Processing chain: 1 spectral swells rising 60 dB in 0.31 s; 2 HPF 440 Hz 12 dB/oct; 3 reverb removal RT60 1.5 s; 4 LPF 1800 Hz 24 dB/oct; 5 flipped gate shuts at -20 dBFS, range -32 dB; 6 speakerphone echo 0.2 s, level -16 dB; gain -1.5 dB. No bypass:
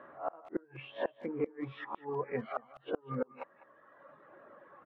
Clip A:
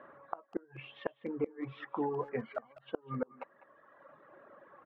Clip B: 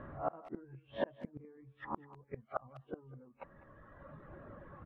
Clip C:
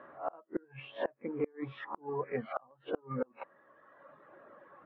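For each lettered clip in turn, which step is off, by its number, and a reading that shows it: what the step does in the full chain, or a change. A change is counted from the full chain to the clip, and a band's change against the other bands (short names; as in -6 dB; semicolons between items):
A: 1, 250 Hz band +2.0 dB; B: 2, 1 kHz band +3.0 dB; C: 6, echo-to-direct -20.0 dB to none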